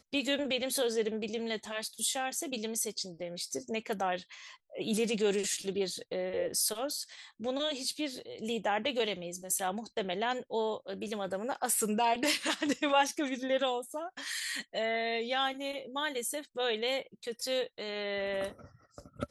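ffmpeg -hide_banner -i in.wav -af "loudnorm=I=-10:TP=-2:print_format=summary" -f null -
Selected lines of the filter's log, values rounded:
Input Integrated:    -33.4 LUFS
Input True Peak:     -15.3 dBTP
Input LRA:             4.5 LU
Input Threshold:     -43.6 LUFS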